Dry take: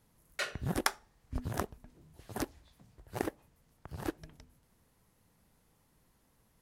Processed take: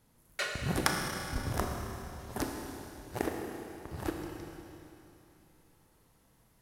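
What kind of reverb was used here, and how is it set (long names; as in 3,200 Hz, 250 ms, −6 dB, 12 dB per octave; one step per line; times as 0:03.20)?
four-comb reverb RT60 3 s, combs from 26 ms, DRR 1 dB
level +1 dB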